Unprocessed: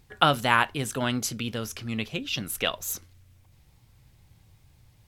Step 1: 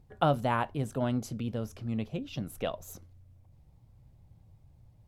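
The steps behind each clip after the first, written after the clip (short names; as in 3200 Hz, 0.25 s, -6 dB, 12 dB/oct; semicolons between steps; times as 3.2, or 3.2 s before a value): EQ curve 170 Hz 0 dB, 410 Hz -4 dB, 620 Hz 0 dB, 1600 Hz -14 dB, 2800 Hz -16 dB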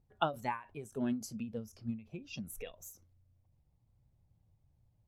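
spectral noise reduction 14 dB; ending taper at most 160 dB/s; gain +1.5 dB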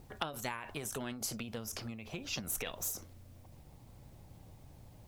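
compressor 4:1, threshold -43 dBFS, peak gain reduction 15 dB; spectral compressor 2:1; gain +8 dB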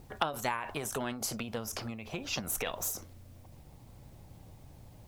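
dynamic EQ 880 Hz, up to +6 dB, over -53 dBFS, Q 0.7; gain +2.5 dB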